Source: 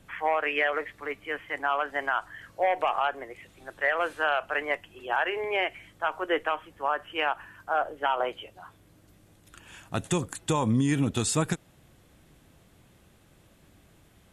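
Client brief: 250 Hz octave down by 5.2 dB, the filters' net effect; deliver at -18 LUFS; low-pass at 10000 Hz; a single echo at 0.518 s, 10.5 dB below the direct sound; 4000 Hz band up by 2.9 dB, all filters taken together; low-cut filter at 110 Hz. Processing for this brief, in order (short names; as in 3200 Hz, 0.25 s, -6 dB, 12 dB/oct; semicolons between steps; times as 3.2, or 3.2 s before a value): HPF 110 Hz; LPF 10000 Hz; bell 250 Hz -6.5 dB; bell 4000 Hz +4.5 dB; echo 0.518 s -10.5 dB; gain +11 dB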